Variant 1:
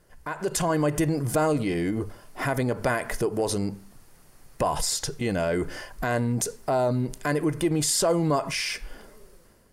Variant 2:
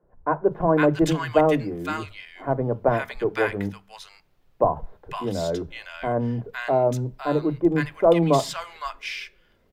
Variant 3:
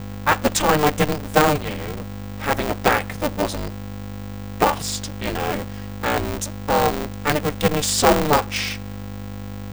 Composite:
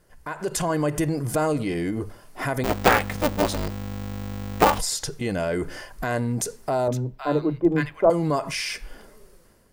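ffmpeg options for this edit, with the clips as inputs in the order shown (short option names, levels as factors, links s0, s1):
-filter_complex "[0:a]asplit=3[s0][s1][s2];[s0]atrim=end=2.642[s3];[2:a]atrim=start=2.638:end=4.792[s4];[s1]atrim=start=4.788:end=6.882[s5];[1:a]atrim=start=6.878:end=8.102[s6];[s2]atrim=start=8.098[s7];[s3][s4]acrossfade=d=0.004:c1=hsin:c2=hsin[s8];[s8][s5]acrossfade=d=0.004:c1=hsin:c2=hsin[s9];[s9][s6]acrossfade=d=0.004:c1=hsin:c2=hsin[s10];[s10][s7]acrossfade=d=0.004:c1=hsin:c2=hsin"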